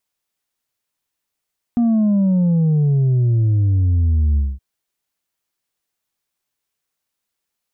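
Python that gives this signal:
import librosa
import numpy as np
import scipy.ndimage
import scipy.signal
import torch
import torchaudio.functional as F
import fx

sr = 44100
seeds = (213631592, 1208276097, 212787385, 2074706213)

y = fx.sub_drop(sr, level_db=-13.0, start_hz=240.0, length_s=2.82, drive_db=3.0, fade_s=0.22, end_hz=65.0)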